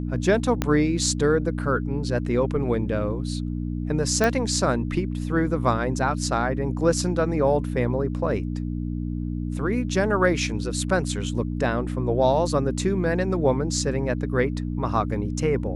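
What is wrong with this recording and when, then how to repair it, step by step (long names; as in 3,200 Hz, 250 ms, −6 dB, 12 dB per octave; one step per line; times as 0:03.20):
mains hum 60 Hz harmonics 5 −28 dBFS
0:00.62: click −8 dBFS
0:04.24: click −8 dBFS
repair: click removal
hum removal 60 Hz, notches 5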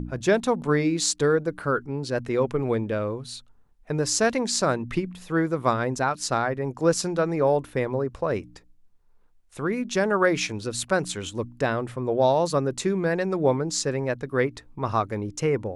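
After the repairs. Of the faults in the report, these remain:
0:00.62: click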